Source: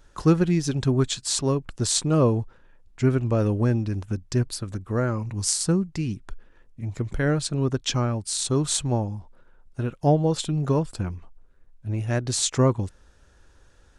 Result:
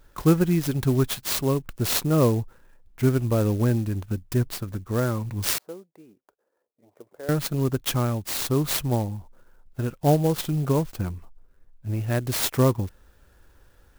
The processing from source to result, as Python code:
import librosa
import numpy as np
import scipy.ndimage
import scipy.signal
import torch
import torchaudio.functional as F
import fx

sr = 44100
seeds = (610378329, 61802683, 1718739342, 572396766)

y = fx.ladder_bandpass(x, sr, hz=630.0, resonance_pct=40, at=(5.58, 7.29))
y = fx.clock_jitter(y, sr, seeds[0], jitter_ms=0.043)